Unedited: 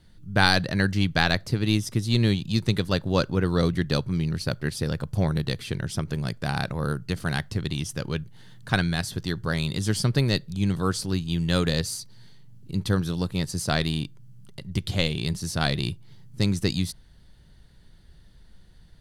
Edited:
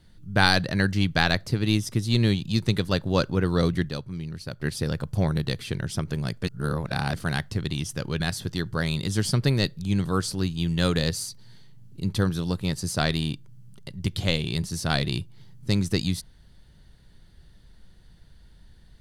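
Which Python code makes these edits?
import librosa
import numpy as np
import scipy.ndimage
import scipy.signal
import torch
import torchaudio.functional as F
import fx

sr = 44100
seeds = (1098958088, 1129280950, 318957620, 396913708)

y = fx.edit(x, sr, fx.clip_gain(start_s=3.89, length_s=0.71, db=-8.0),
    fx.reverse_span(start_s=6.43, length_s=0.71),
    fx.cut(start_s=8.2, length_s=0.71), tone=tone)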